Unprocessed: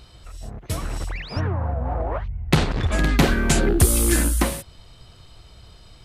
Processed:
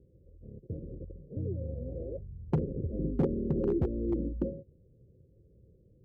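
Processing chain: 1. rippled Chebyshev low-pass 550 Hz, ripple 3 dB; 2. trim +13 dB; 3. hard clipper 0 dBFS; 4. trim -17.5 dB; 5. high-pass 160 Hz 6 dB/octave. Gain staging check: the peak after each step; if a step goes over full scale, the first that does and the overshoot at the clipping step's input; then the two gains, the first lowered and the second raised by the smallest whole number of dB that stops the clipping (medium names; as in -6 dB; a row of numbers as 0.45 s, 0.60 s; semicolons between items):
-7.0 dBFS, +6.0 dBFS, 0.0 dBFS, -17.5 dBFS, -14.5 dBFS; step 2, 6.0 dB; step 2 +7 dB, step 4 -11.5 dB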